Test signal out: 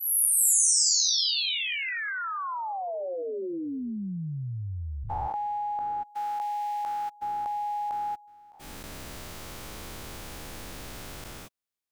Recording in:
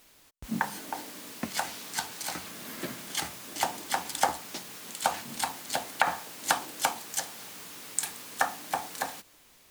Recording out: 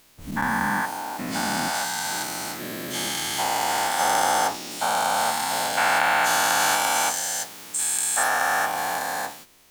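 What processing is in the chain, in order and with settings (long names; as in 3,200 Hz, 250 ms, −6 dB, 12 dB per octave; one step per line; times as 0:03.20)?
every bin's largest magnitude spread in time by 480 ms
level −3 dB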